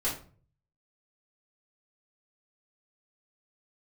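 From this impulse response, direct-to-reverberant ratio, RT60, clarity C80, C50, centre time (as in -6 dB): -9.5 dB, 0.40 s, 12.0 dB, 7.0 dB, 28 ms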